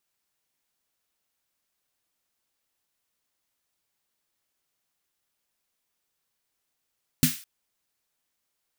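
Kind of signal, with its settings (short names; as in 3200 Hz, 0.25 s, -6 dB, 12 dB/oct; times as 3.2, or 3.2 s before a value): snare drum length 0.21 s, tones 160 Hz, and 250 Hz, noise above 1600 Hz, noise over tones -5 dB, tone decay 0.16 s, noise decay 0.41 s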